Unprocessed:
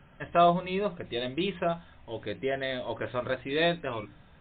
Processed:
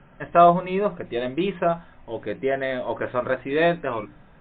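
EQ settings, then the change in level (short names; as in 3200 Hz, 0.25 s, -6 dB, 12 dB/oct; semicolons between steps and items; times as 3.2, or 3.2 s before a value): dynamic EQ 1200 Hz, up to +3 dB, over -39 dBFS, Q 0.78; air absorption 460 m; bell 81 Hz -10.5 dB 1.1 oct; +7.5 dB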